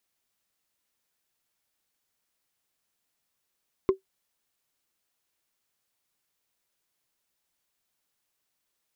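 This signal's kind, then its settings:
struck wood, lowest mode 383 Hz, decay 0.12 s, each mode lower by 10.5 dB, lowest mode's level −13 dB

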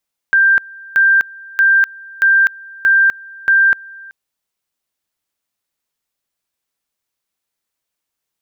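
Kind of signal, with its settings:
tone at two levels in turn 1,580 Hz −7.5 dBFS, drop 24.5 dB, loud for 0.25 s, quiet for 0.38 s, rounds 6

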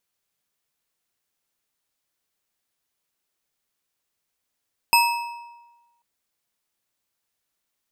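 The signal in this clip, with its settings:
struck metal bar, length 1.09 s, lowest mode 945 Hz, modes 5, decay 1.20 s, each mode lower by 2.5 dB, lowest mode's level −14 dB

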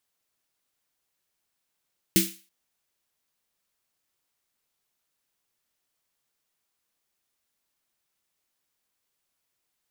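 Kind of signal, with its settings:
synth snare length 0.33 s, tones 190 Hz, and 330 Hz, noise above 2,000 Hz, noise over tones −1 dB, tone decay 0.27 s, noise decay 0.37 s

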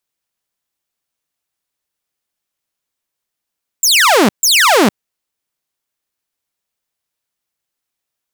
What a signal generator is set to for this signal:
repeated falling chirps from 7,700 Hz, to 180 Hz, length 0.46 s saw, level −4.5 dB, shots 2, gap 0.14 s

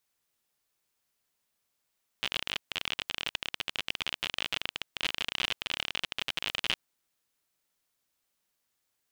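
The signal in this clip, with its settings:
Geiger counter clicks 42 per second −14 dBFS 4.53 s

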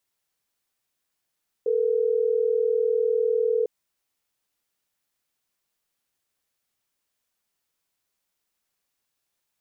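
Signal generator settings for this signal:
call progress tone ringback tone, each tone −22.5 dBFS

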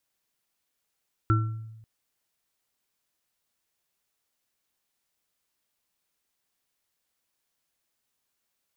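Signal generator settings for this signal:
inharmonic partials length 0.54 s, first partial 111 Hz, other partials 324/1,350 Hz, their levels −6/−4.5 dB, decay 1.05 s, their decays 0.44/0.43 s, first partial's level −18 dB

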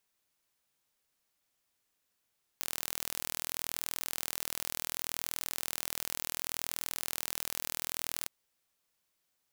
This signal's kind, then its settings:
impulse train 40.7 per second, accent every 0, −8 dBFS 5.66 s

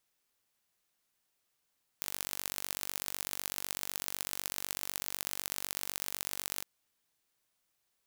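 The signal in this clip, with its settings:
impulse train 48 per second, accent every 3, −6.5 dBFS 4.62 s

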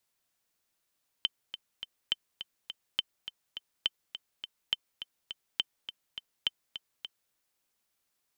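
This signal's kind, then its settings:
click track 207 BPM, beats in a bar 3, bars 7, 3,080 Hz, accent 11.5 dB −13.5 dBFS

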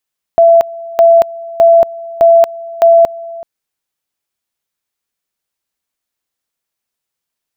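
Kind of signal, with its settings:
tone at two levels in turn 671 Hz −2.5 dBFS, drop 20.5 dB, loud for 0.23 s, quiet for 0.38 s, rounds 5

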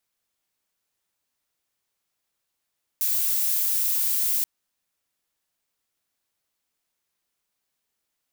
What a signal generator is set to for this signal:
noise violet, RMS −23.5 dBFS 1.43 s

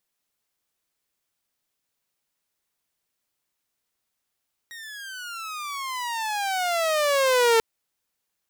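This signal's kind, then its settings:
pitch glide with a swell saw, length 2.89 s, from 1,890 Hz, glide −25 semitones, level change +22 dB, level −13 dB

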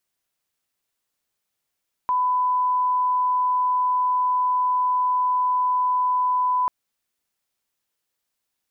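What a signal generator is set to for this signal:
line-up tone −18 dBFS 4.59 s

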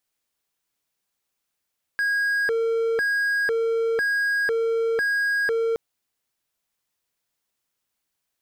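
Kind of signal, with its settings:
siren hi-lo 456–1,640 Hz 1 per second triangle −18 dBFS 3.77 s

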